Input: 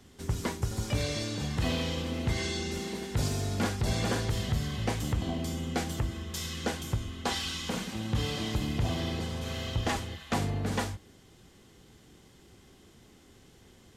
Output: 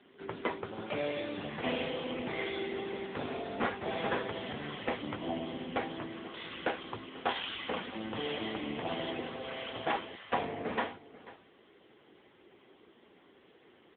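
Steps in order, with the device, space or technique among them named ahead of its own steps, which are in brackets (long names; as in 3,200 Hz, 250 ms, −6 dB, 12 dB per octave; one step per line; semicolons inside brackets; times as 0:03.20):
satellite phone (band-pass filter 350–3,300 Hz; single-tap delay 489 ms −18 dB; level +4.5 dB; AMR narrowband 6.7 kbit/s 8,000 Hz)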